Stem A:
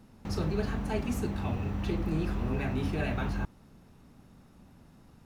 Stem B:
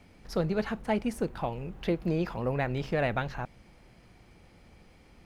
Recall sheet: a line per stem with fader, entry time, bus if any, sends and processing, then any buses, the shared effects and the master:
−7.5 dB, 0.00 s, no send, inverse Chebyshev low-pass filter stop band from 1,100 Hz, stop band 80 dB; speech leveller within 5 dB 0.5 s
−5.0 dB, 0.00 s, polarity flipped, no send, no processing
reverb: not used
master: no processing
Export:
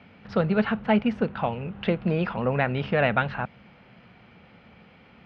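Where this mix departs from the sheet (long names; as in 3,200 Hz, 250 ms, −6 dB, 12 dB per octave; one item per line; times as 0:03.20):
stem B −5.0 dB → +6.0 dB
master: extra loudspeaker in its box 120–3,600 Hz, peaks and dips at 210 Hz +4 dB, 330 Hz −8 dB, 1,400 Hz +5 dB, 2,800 Hz +4 dB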